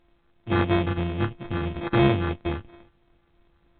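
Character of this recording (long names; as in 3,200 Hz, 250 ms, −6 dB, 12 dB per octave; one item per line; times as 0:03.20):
a buzz of ramps at a fixed pitch in blocks of 128 samples
phaser sweep stages 4, 3 Hz, lowest notch 730–2,300 Hz
aliases and images of a low sample rate 2,900 Hz, jitter 0%
A-law companding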